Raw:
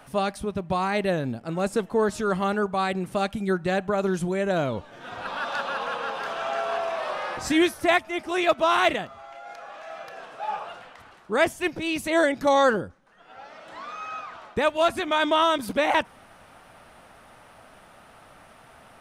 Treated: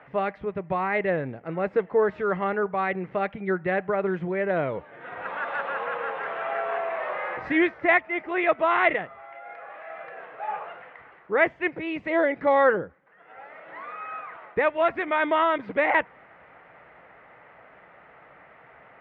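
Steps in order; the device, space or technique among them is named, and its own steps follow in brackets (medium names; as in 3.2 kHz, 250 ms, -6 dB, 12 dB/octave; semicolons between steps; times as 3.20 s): 11.71–12.32 s: dynamic bell 1.8 kHz, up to -6 dB, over -38 dBFS, Q 1.7; bass cabinet (cabinet simulation 79–2400 Hz, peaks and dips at 96 Hz -10 dB, 230 Hz -8 dB, 470 Hz +5 dB, 2 kHz +9 dB); trim -1.5 dB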